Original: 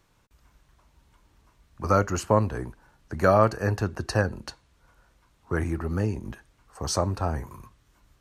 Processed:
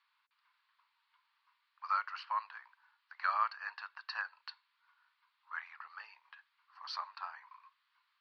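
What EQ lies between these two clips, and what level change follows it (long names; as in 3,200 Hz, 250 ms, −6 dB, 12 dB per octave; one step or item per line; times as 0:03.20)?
elliptic high-pass filter 1,000 Hz, stop band 70 dB
elliptic low-pass filter 4,600 Hz, stop band 40 dB
−6.0 dB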